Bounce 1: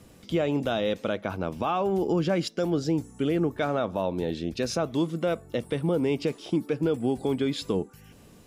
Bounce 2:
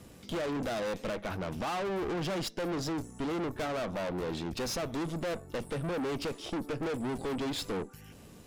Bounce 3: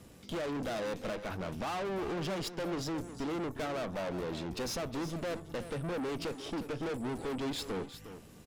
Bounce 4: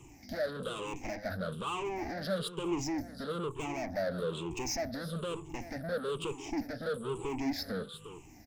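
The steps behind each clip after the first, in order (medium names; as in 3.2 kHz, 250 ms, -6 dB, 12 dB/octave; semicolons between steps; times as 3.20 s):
valve stage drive 36 dB, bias 0.75; trim +4.5 dB
delay 359 ms -12 dB; trim -2.5 dB
drifting ripple filter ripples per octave 0.69, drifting -1.1 Hz, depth 22 dB; trim -4.5 dB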